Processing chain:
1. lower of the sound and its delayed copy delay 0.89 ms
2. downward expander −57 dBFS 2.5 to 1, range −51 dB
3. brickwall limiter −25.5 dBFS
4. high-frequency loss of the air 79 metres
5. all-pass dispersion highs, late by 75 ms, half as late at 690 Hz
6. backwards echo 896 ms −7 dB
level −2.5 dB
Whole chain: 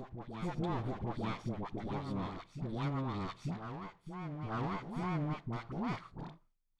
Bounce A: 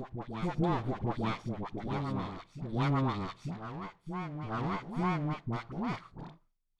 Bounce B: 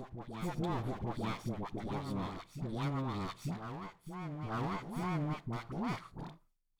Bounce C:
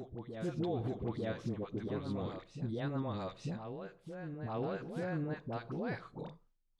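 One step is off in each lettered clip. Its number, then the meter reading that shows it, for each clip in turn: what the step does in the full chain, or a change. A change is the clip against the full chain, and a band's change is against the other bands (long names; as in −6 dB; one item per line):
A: 3, average gain reduction 2.0 dB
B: 4, 4 kHz band +2.0 dB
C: 1, 500 Hz band +6.0 dB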